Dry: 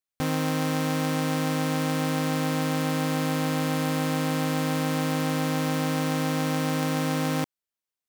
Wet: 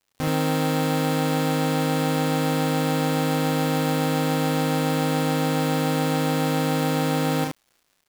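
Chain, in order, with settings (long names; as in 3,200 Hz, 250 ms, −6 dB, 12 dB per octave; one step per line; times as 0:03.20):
surface crackle 110 per second −48 dBFS
loudspeakers that aren't time-aligned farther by 11 metres −3 dB, 25 metres −3 dB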